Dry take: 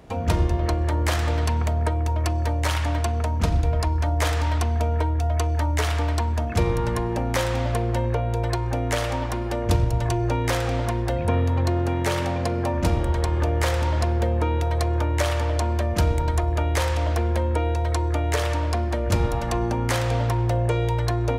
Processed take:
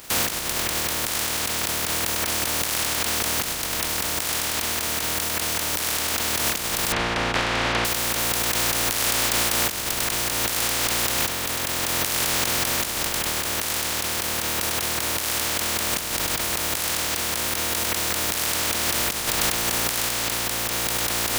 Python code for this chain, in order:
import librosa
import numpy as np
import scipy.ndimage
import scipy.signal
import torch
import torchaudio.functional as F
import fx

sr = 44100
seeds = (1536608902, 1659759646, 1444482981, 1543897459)

y = fx.spec_flatten(x, sr, power=0.12)
y = fx.lowpass(y, sr, hz=2800.0, slope=12, at=(6.92, 7.85))
y = fx.over_compress(y, sr, threshold_db=-27.0, ratio=-1.0)
y = F.gain(torch.from_numpy(y), 2.0).numpy()